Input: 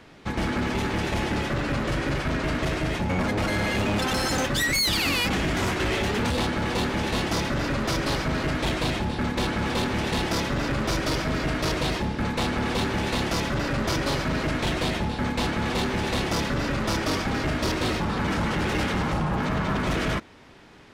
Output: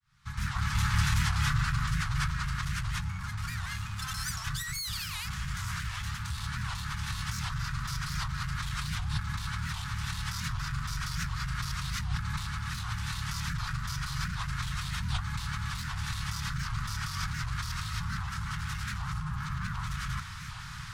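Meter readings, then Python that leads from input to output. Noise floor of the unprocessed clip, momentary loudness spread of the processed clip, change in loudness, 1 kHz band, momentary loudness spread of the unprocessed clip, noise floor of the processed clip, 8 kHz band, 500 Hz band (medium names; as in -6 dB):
-32 dBFS, 6 LU, -8.0 dB, -9.5 dB, 2 LU, -39 dBFS, -4.5 dB, under -35 dB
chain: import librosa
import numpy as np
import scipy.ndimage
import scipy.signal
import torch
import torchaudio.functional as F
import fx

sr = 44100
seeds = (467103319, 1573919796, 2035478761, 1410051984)

y = fx.fade_in_head(x, sr, length_s=2.92)
y = fx.over_compress(y, sr, threshold_db=-35.0, ratio=-1.0)
y = scipy.signal.sosfilt(scipy.signal.ellip(3, 1.0, 70, [140.0, 1200.0], 'bandstop', fs=sr, output='sos'), y)
y = fx.peak_eq(y, sr, hz=2500.0, db=-9.0, octaves=1.4)
y = fx.record_warp(y, sr, rpm=78.0, depth_cents=250.0)
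y = F.gain(torch.from_numpy(y), 7.5).numpy()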